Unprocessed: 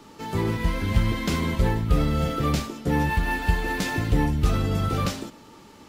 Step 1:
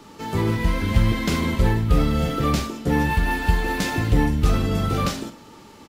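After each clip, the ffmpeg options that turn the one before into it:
-filter_complex "[0:a]asplit=2[a][b];[b]adelay=45,volume=-10.5dB[c];[a][c]amix=inputs=2:normalize=0,volume=2.5dB"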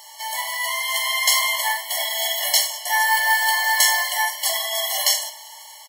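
-af "dynaudnorm=f=360:g=5:m=6dB,crystalizer=i=6.5:c=0,afftfilt=real='re*eq(mod(floor(b*sr/1024/570),2),1)':imag='im*eq(mod(floor(b*sr/1024/570),2),1)':win_size=1024:overlap=0.75"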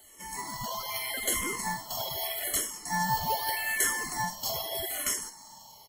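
-filter_complex "[0:a]acrossover=split=1900|3400[a][b][c];[b]acrusher=samples=19:mix=1:aa=0.000001:lfo=1:lforange=19:lforate=0.75[d];[a][d][c]amix=inputs=3:normalize=0,asplit=2[e][f];[f]afreqshift=-0.81[g];[e][g]amix=inputs=2:normalize=1,volume=-6.5dB"

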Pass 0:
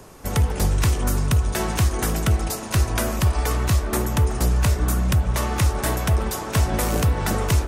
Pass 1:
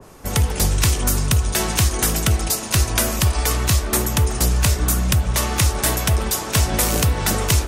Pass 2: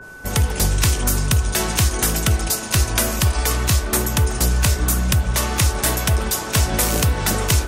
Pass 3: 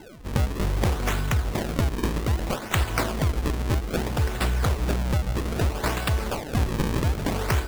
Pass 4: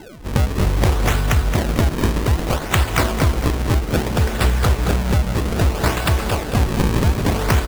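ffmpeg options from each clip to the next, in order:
-af "adynamicequalizer=threshold=0.00708:dfrequency=2200:dqfactor=0.7:tfrequency=2200:tqfactor=0.7:attack=5:release=100:ratio=0.375:range=4:mode=boostabove:tftype=highshelf,volume=1dB"
-af "aeval=exprs='val(0)+0.0141*sin(2*PI*1500*n/s)':c=same"
-af "acrusher=samples=36:mix=1:aa=0.000001:lfo=1:lforange=57.6:lforate=0.62,volume=-6dB"
-af "aecho=1:1:223|446|669|892:0.447|0.17|0.0645|0.0245,volume=6dB"

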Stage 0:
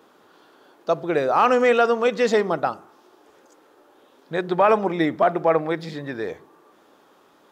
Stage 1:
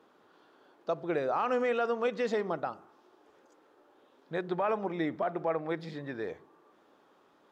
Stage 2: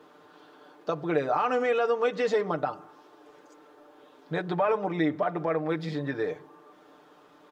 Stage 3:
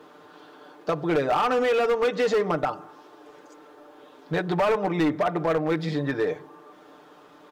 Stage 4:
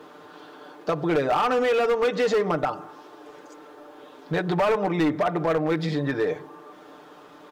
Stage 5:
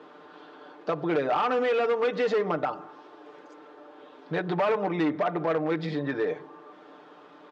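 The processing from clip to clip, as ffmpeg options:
-af "alimiter=limit=-12.5dB:level=0:latency=1:release=180,highshelf=f=6.5k:g=-11,volume=-8dB"
-filter_complex "[0:a]aecho=1:1:6.7:0.69,asplit=2[a][b];[b]acompressor=threshold=-36dB:ratio=6,volume=1.5dB[c];[a][c]amix=inputs=2:normalize=0"
-af "volume=23dB,asoftclip=hard,volume=-23dB,volume=5dB"
-af "alimiter=limit=-21dB:level=0:latency=1:release=87,volume=3.5dB"
-af "highpass=160,lowpass=4k,volume=-3dB"

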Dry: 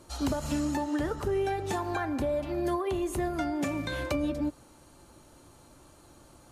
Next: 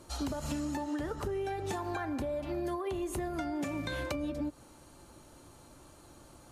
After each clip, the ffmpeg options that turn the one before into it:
-af "acompressor=threshold=-32dB:ratio=6"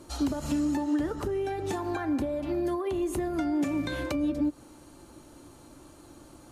-af "equalizer=f=300:t=o:w=0.63:g=7,volume=2dB"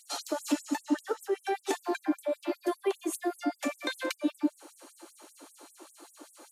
-af "afftfilt=real='re*gte(b*sr/1024,250*pow(7900/250,0.5+0.5*sin(2*PI*5.1*pts/sr)))':imag='im*gte(b*sr/1024,250*pow(7900/250,0.5+0.5*sin(2*PI*5.1*pts/sr)))':win_size=1024:overlap=0.75,volume=4.5dB"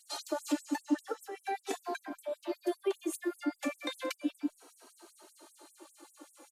-filter_complex "[0:a]asplit=2[a][b];[b]adelay=2.8,afreqshift=-0.37[c];[a][c]amix=inputs=2:normalize=1,volume=-1.5dB"

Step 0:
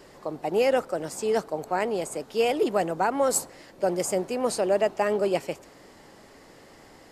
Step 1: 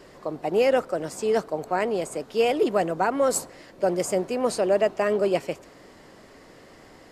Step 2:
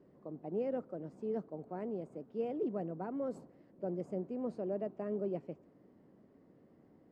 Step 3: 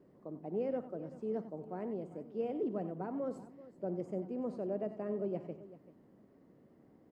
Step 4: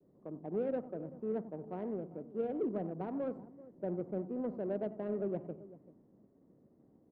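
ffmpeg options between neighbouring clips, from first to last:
-af "highshelf=f=6k:g=-5.5,bandreject=f=840:w=12,volume=2dB"
-af "bandpass=f=200:t=q:w=1.2:csg=0,volume=-7.5dB"
-af "aecho=1:1:56|92|93|386:0.15|0.141|0.237|0.141"
-af "agate=range=-33dB:threshold=-59dB:ratio=3:detection=peak,adynamicsmooth=sensitivity=3.5:basefreq=1k,volume=1dB"

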